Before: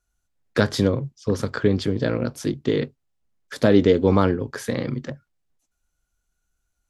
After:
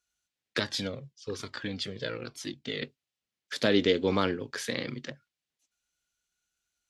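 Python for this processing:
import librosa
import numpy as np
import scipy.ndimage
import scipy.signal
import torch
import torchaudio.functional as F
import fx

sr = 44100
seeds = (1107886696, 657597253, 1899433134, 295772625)

y = fx.weighting(x, sr, curve='D')
y = fx.comb_cascade(y, sr, direction='falling', hz=1.1, at=(0.59, 2.82))
y = y * 10.0 ** (-8.0 / 20.0)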